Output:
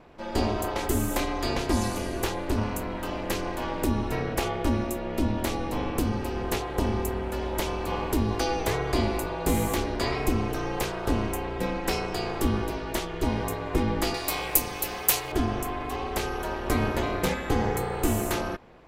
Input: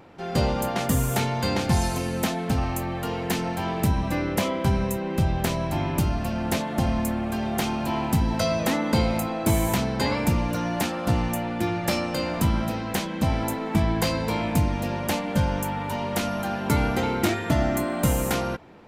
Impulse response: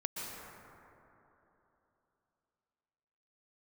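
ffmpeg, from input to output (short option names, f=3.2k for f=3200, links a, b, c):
-filter_complex "[0:a]asettb=1/sr,asplit=3[a][b][c];[a]atrim=end=14.144[d];[b]atrim=start=14.14:end=15.32,asetpts=PTS-STARTPTS,afade=t=in:d=0.004:c=qsin,afade=t=out:st=1.176:d=0.004:c=qsin,aemphasis=mode=production:type=riaa[e];[c]atrim=start=15.316[f];[d][e]acrossfade=d=0.004:c1=hsin:c2=qsin[g];[g][f]acrossfade=d=0.004:c1=qsin:c2=hsin,aeval=exprs='val(0)*sin(2*PI*160*n/s)':c=same"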